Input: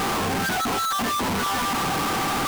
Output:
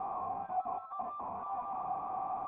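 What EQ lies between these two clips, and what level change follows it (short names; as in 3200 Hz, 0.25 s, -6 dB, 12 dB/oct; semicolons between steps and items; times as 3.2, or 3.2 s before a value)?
vocal tract filter a; low shelf 290 Hz +6.5 dB; -3.5 dB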